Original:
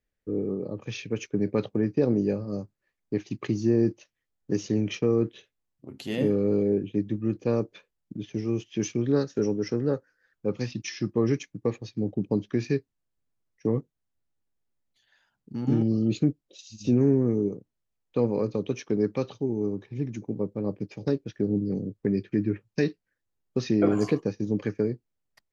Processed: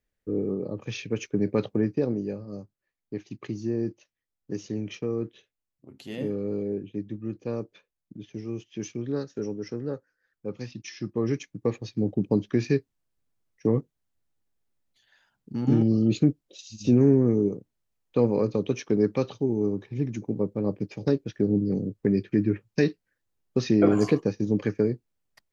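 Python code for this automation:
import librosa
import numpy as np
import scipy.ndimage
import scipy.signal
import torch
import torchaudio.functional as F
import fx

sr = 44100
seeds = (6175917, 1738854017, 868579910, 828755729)

y = fx.gain(x, sr, db=fx.line((1.82, 1.0), (2.22, -6.0), (10.8, -6.0), (11.89, 2.5)))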